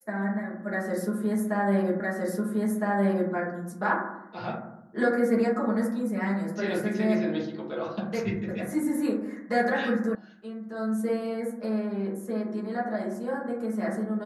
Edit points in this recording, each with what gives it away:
0:02.00: the same again, the last 1.31 s
0:10.15: cut off before it has died away

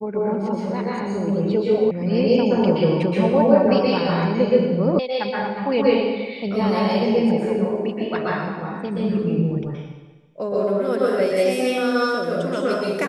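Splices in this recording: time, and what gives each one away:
0:01.91: cut off before it has died away
0:04.99: cut off before it has died away

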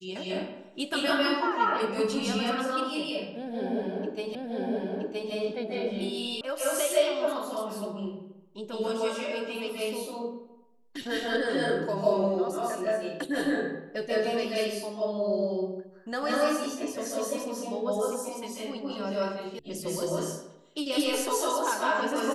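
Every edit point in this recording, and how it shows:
0:04.35: the same again, the last 0.97 s
0:06.41: cut off before it has died away
0:19.59: cut off before it has died away

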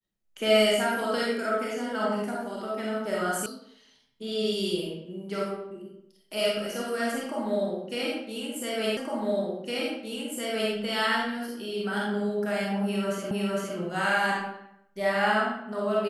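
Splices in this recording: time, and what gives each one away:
0:03.46: cut off before it has died away
0:08.97: the same again, the last 1.76 s
0:13.31: the same again, the last 0.46 s

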